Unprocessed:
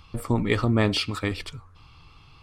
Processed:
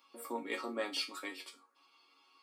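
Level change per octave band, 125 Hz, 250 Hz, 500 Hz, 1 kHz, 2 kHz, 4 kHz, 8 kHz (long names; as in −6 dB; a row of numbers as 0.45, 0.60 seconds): below −40 dB, −19.5 dB, −13.0 dB, −10.5 dB, −11.5 dB, −10.5 dB, −7.5 dB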